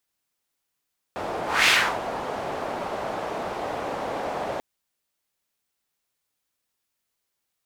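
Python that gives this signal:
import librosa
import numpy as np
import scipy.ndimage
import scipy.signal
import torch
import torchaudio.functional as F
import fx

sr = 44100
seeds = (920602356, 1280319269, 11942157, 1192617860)

y = fx.whoosh(sr, seeds[0], length_s=3.44, peak_s=0.52, rise_s=0.24, fall_s=0.34, ends_hz=670.0, peak_hz=2600.0, q=1.6, swell_db=13.0)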